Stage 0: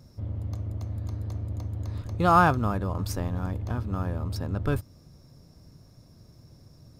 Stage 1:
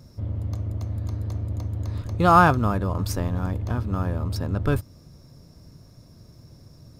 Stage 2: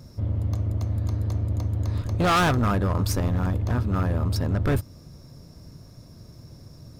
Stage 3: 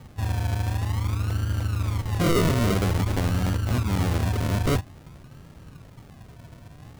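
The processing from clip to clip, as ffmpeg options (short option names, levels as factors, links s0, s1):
-af "bandreject=f=780:w=21,volume=1.58"
-af "asoftclip=type=hard:threshold=0.0891,volume=1.41"
-af "acrusher=samples=42:mix=1:aa=0.000001:lfo=1:lforange=25.2:lforate=0.5"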